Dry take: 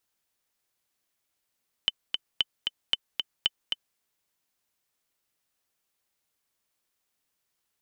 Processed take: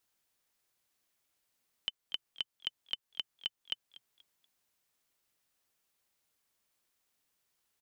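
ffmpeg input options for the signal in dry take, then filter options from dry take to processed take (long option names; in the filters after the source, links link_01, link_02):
-f lavfi -i "aevalsrc='pow(10,(-9.5-4.5*gte(mod(t,2*60/228),60/228))/20)*sin(2*PI*3040*mod(t,60/228))*exp(-6.91*mod(t,60/228)/0.03)':duration=2.1:sample_rate=44100"
-filter_complex "[0:a]alimiter=limit=-19.5dB:level=0:latency=1:release=417,asplit=4[link_01][link_02][link_03][link_04];[link_02]adelay=240,afreqshift=120,volume=-19dB[link_05];[link_03]adelay=480,afreqshift=240,volume=-28.6dB[link_06];[link_04]adelay=720,afreqshift=360,volume=-38.3dB[link_07];[link_01][link_05][link_06][link_07]amix=inputs=4:normalize=0"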